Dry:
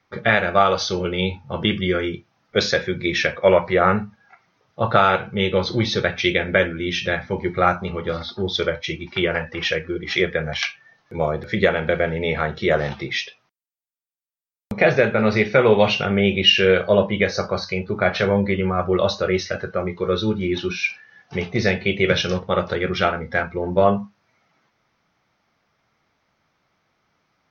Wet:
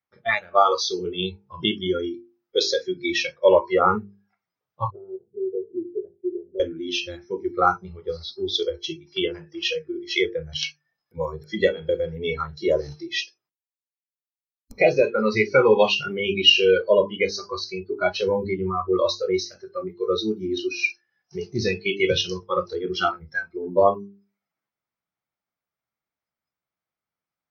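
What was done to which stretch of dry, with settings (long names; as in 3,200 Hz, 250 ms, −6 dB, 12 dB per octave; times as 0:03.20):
0:04.90–0:06.60: transistor ladder low-pass 450 Hz, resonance 65%
whole clip: noise reduction from a noise print of the clip's start 24 dB; mains-hum notches 50/100/150/200/250/300/350/400/450 Hz; dynamic equaliser 170 Hz, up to −7 dB, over −40 dBFS, Q 2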